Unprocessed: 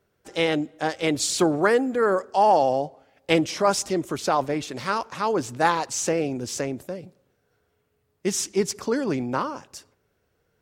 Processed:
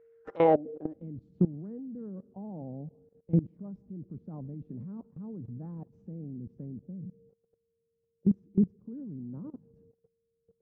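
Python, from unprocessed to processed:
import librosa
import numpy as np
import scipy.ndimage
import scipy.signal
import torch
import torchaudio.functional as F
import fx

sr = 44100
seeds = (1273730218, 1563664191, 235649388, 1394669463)

y = x + 10.0 ** (-44.0 / 20.0) * np.sin(2.0 * np.pi * 460.0 * np.arange(len(x)) / sr)
y = fx.filter_sweep_lowpass(y, sr, from_hz=2000.0, to_hz=190.0, start_s=0.13, end_s=1.05, q=3.3)
y = fx.level_steps(y, sr, step_db=20)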